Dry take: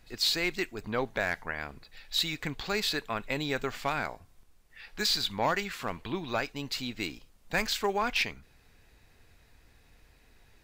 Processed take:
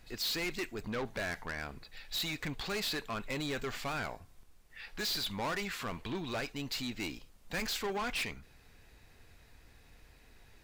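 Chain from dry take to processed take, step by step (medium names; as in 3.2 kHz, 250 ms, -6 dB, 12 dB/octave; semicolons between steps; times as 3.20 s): saturation -33 dBFS, distortion -6 dB; trim +1 dB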